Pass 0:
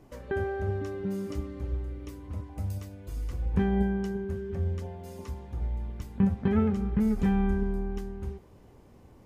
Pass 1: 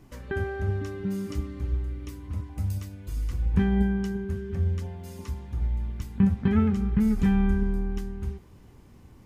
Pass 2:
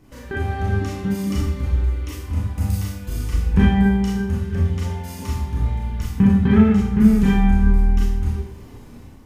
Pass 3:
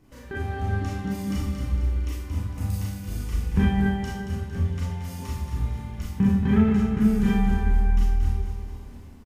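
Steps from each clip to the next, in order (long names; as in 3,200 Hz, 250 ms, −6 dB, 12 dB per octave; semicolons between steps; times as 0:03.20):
parametric band 570 Hz −9.5 dB 1.4 octaves; level +4.5 dB
four-comb reverb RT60 0.55 s, combs from 26 ms, DRR −4 dB; automatic gain control gain up to 6.5 dB
repeating echo 228 ms, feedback 44%, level −7 dB; level −6 dB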